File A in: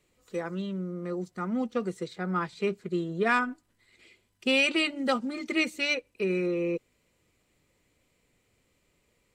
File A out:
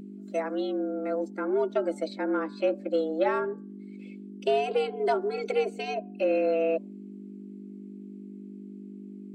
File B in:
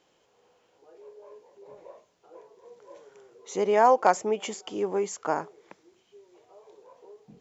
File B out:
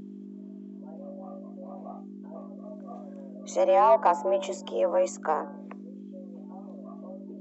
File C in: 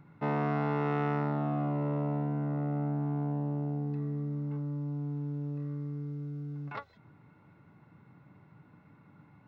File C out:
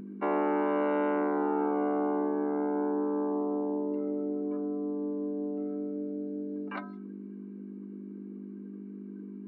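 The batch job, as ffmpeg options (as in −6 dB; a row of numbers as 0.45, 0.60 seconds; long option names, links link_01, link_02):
-filter_complex "[0:a]bandreject=frequency=142.5:width_type=h:width=4,bandreject=frequency=285:width_type=h:width=4,bandreject=frequency=427.5:width_type=h:width=4,bandreject=frequency=570:width_type=h:width=4,bandreject=frequency=712.5:width_type=h:width=4,bandreject=frequency=855:width_type=h:width=4,bandreject=frequency=997.5:width_type=h:width=4,bandreject=frequency=1140:width_type=h:width=4,bandreject=frequency=1282.5:width_type=h:width=4,bandreject=frequency=1425:width_type=h:width=4,bandreject=frequency=1567.5:width_type=h:width=4,afftdn=noise_reduction=13:noise_floor=-52,acrossover=split=300|860[link_01][link_02][link_03];[link_03]acompressor=threshold=-42dB:ratio=10[link_04];[link_01][link_02][link_04]amix=inputs=3:normalize=0,aeval=exprs='val(0)+0.00562*(sin(2*PI*50*n/s)+sin(2*PI*2*50*n/s)/2+sin(2*PI*3*50*n/s)/3+sin(2*PI*4*50*n/s)/4+sin(2*PI*5*50*n/s)/5)':channel_layout=same,afreqshift=150,asplit=2[link_05][link_06];[link_06]asoftclip=type=tanh:threshold=-21dB,volume=-5.5dB[link_07];[link_05][link_07]amix=inputs=2:normalize=0"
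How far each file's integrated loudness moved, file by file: +0.5, +0.5, +2.5 LU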